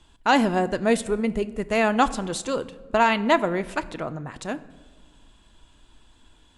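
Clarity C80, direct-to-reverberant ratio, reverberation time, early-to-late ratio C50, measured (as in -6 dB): 19.0 dB, 11.5 dB, 1.5 s, 17.5 dB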